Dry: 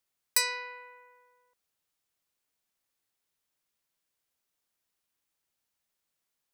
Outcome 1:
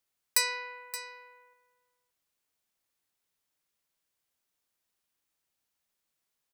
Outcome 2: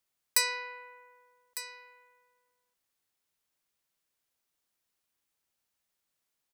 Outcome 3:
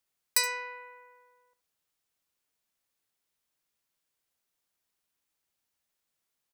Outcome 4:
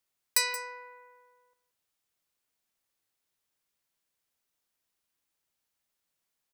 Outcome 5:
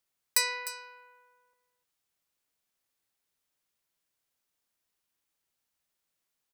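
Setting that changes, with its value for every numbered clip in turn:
echo, time: 573, 1203, 73, 176, 303 ms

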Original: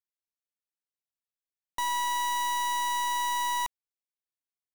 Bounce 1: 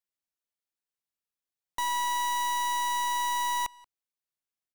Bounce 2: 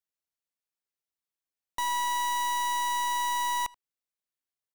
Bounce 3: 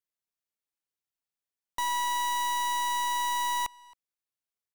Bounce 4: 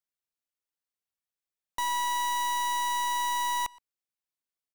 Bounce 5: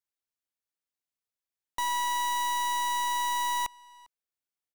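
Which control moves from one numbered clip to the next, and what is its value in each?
speakerphone echo, time: 180, 80, 270, 120, 400 ms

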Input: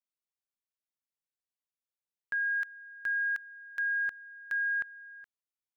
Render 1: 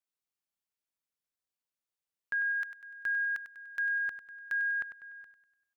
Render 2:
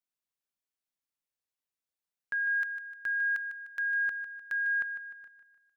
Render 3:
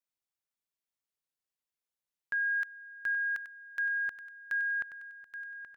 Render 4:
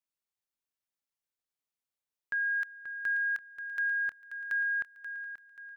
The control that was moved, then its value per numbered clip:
feedback echo, time: 98, 151, 826, 533 ms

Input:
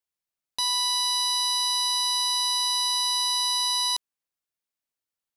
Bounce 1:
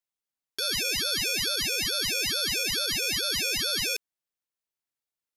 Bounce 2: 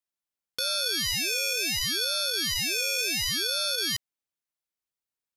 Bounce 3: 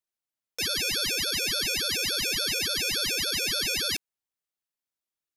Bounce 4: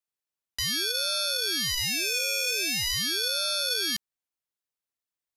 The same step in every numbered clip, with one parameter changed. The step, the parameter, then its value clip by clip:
ring modulator with a swept carrier, at: 2.3, 0.69, 3.5, 0.43 Hz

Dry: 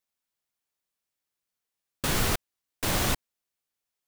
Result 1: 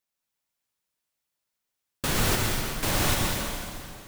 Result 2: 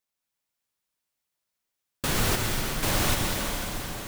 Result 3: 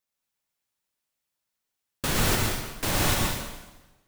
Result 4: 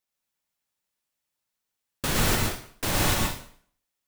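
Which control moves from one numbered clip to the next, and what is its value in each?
plate-style reverb, RT60: 2.4, 5, 1.1, 0.53 s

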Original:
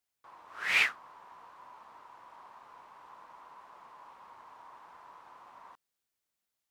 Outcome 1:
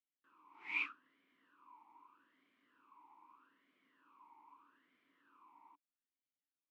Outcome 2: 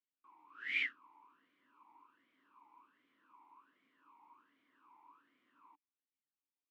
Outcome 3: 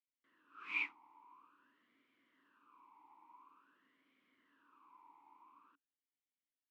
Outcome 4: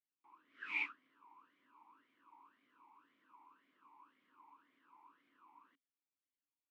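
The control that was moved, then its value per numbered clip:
vowel sweep, rate: 0.8, 1.3, 0.48, 1.9 Hz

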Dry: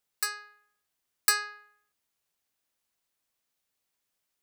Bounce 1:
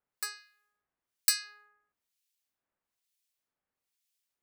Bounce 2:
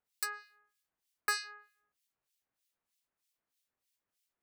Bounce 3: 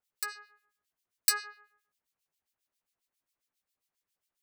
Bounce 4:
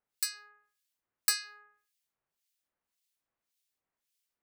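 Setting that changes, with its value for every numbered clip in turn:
harmonic tremolo, rate: 1.1, 3.2, 7.4, 1.8 Hz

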